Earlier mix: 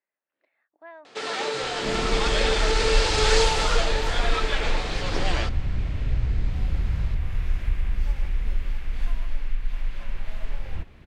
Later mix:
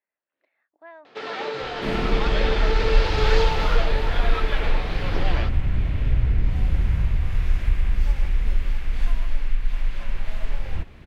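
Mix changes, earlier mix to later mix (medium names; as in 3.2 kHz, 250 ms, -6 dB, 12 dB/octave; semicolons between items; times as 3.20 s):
first sound: add distance through air 210 m; second sound +4.0 dB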